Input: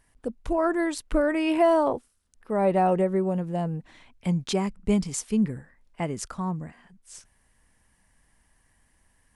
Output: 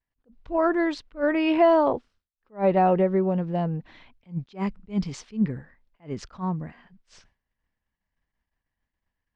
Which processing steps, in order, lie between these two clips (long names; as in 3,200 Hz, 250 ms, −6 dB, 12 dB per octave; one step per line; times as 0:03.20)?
downward expander −51 dBFS
low-pass filter 4,700 Hz 24 dB per octave
level that may rise only so fast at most 270 dB per second
level +2 dB